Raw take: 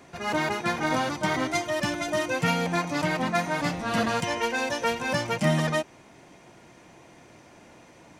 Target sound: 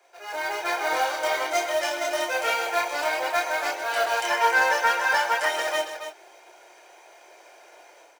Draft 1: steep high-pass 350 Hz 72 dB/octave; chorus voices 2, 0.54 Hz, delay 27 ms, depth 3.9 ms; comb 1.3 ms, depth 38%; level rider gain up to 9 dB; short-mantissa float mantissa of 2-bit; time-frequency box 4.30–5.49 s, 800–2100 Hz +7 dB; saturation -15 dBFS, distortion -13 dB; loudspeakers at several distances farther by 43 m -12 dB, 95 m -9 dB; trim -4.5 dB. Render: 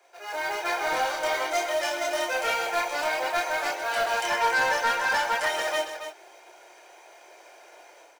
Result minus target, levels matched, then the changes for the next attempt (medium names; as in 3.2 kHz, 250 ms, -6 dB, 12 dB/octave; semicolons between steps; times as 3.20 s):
saturation: distortion +11 dB
change: saturation -6.5 dBFS, distortion -24 dB